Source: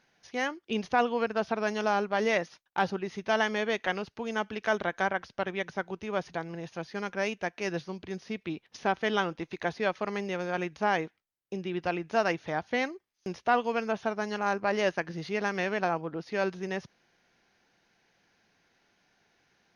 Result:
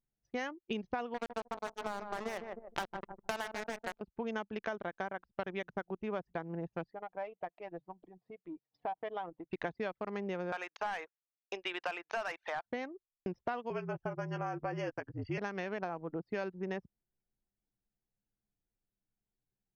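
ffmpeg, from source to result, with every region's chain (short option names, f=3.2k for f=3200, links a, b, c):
-filter_complex "[0:a]asettb=1/sr,asplit=3[a][b][c];[a]atrim=end=1.144[d];[b]atrim=start=1.14:end=4.01,asetpts=PTS-STARTPTS,afade=t=in:d=0.004:c=qsin,afade=t=out:st=2.866:d=0.004:c=qsin,acrusher=bits=3:mix=0:aa=0.5,asplit=2[e][f];[f]adelay=153,lowpass=f=1.5k:p=1,volume=-8.5dB,asplit=2[g][h];[h]adelay=153,lowpass=f=1.5k:p=1,volume=0.43,asplit=2[i][j];[j]adelay=153,lowpass=f=1.5k:p=1,volume=0.43,asplit=2[k][l];[l]adelay=153,lowpass=f=1.5k:p=1,volume=0.43,asplit=2[m][n];[n]adelay=153,lowpass=f=1.5k:p=1,volume=0.43[o];[e][g][i][k][m][o]amix=inputs=6:normalize=0,atrim=end_sample=126567[p];[c]atrim=start=4.006[q];[d][p]acrossfade=d=0.004:c1=hsin:c2=qsin[r];[r][q]acrossfade=d=0.004:c1=qsin:c2=hsin,asettb=1/sr,asplit=3[s][t][u];[s]atrim=end=6.914[v];[t]atrim=start=6.91:end=9.5,asetpts=PTS-STARTPTS,afade=t=in:d=0.004:c=qsin,afade=t=out:st=2.586:d=0.004:c=qsin,aecho=1:1:6.4:0.49,atrim=end_sample=114219,acompressor=threshold=-41dB:ratio=2.5:attack=3.2:release=140:knee=1:detection=peak,highpass=160,equalizer=f=200:t=q:w=4:g=-9,equalizer=f=370:t=q:w=4:g=-4,equalizer=f=720:t=q:w=4:g=8,equalizer=f=1k:t=q:w=4:g=4,equalizer=f=1.5k:t=q:w=4:g=-7,equalizer=f=2.6k:t=q:w=4:g=-4,lowpass=f=4.6k:w=0.5412,lowpass=f=4.6k:w=1.3066[w];[u]atrim=start=9.496[x];[v][w]acrossfade=d=0.004:c1=hsin:c2=qsin[y];[y][x]acrossfade=d=0.004:c1=qsin:c2=hsin,asettb=1/sr,asplit=3[z][aa][ab];[z]atrim=end=10.524[ac];[aa]atrim=start=10.52:end=12.66,asetpts=PTS-STARTPTS,afade=t=in:d=0.004:c=qsin,afade=t=out:st=2.136:d=0.004:c=qsin,highpass=740,asplit=2[ad][ae];[ae]highpass=f=720:p=1,volume=17dB,asoftclip=type=tanh:threshold=-15.5dB[af];[ad][af]amix=inputs=2:normalize=0,lowpass=f=5.8k:p=1,volume=-6dB[ag];[ab]atrim=start=12.656[ah];[ac][ag]acrossfade=d=0.004:c1=hsin:c2=qsin[ai];[ai][ah]acrossfade=d=0.004:c1=qsin:c2=hsin,asettb=1/sr,asplit=3[aj][ak][al];[aj]atrim=end=13.704[am];[ak]atrim=start=13.7:end=15.38,asetpts=PTS-STARTPTS,afade=t=in:d=0.004:c=qsin,afade=t=out:st=1.676:d=0.004:c=qsin,asuperstop=centerf=3900:order=20:qfactor=3.9,afreqshift=-49,asplit=2[an][ao];[ao]adelay=12,volume=-6.5dB[ap];[an][ap]amix=inputs=2:normalize=0,atrim=end_sample=74088[aq];[al]atrim=start=15.376[ar];[am][aq]acrossfade=d=0.004:c1=hsin:c2=qsin[as];[as][ar]acrossfade=d=0.004:c1=qsin:c2=hsin,anlmdn=1.58,acompressor=threshold=-35dB:ratio=10,adynamicequalizer=threshold=0.00251:dfrequency=1500:dqfactor=0.7:tfrequency=1500:tqfactor=0.7:attack=5:release=100:ratio=0.375:range=3:mode=cutabove:tftype=highshelf,volume=1.5dB"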